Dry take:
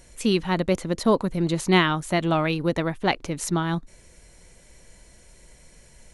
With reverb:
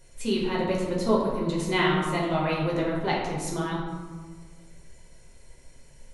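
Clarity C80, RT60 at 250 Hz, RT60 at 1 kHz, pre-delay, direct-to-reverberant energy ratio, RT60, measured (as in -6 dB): 3.5 dB, 1.7 s, 1.5 s, 5 ms, -5.0 dB, 1.5 s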